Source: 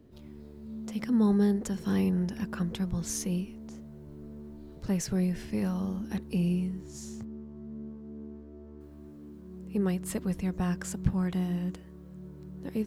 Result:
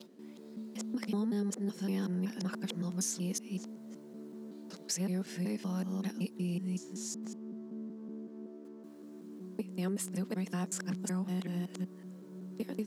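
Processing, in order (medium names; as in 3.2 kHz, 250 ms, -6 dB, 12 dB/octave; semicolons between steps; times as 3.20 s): time reversed locally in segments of 188 ms; elliptic high-pass 180 Hz; peaking EQ 6.8 kHz +7 dB 1.9 oct; compression 3:1, threshold -33 dBFS, peak gain reduction 9.5 dB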